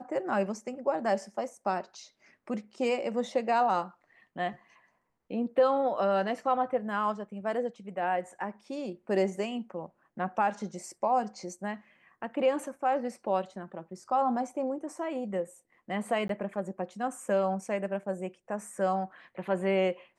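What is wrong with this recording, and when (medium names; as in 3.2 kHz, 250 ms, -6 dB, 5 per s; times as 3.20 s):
16.28–16.29 s: dropout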